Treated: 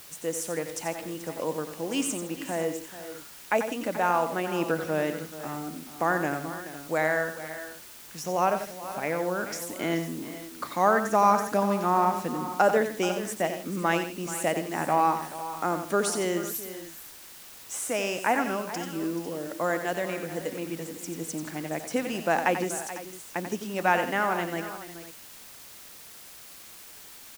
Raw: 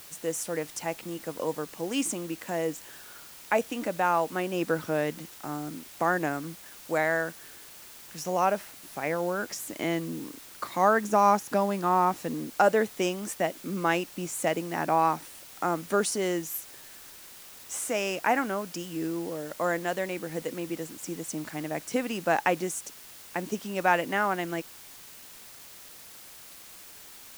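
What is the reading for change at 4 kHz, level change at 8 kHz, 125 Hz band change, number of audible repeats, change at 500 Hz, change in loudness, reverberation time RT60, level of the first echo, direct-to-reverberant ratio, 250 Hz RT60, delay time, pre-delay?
+1.0 dB, +1.0 dB, +1.0 dB, 4, +1.0 dB, +0.5 dB, no reverb audible, −9.0 dB, no reverb audible, no reverb audible, 90 ms, no reverb audible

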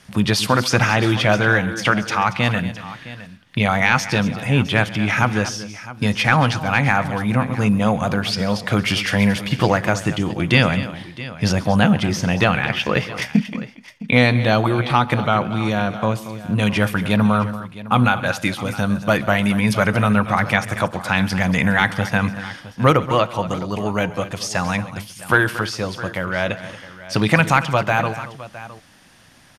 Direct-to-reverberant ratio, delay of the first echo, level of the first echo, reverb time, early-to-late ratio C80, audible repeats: no reverb audible, 135 ms, −19.5 dB, no reverb audible, no reverb audible, 3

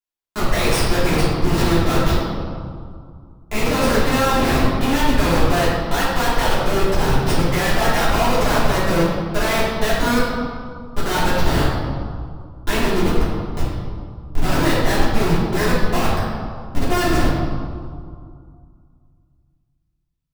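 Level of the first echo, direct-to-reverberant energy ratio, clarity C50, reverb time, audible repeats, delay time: no echo audible, −11.0 dB, −1.0 dB, 2.2 s, no echo audible, no echo audible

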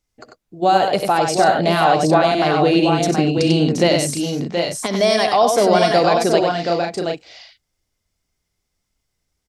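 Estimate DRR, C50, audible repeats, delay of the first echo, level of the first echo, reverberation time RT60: no reverb audible, no reverb audible, 4, 63 ms, −14.0 dB, no reverb audible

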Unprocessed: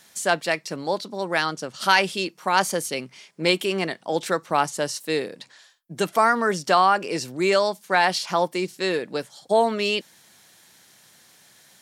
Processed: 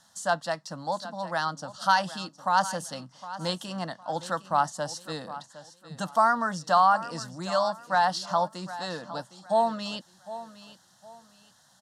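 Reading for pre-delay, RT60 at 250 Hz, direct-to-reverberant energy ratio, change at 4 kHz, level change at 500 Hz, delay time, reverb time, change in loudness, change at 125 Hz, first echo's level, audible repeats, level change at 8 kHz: no reverb audible, no reverb audible, no reverb audible, −8.0 dB, −7.5 dB, 760 ms, no reverb audible, −4.5 dB, −3.5 dB, −15.0 dB, 2, −7.5 dB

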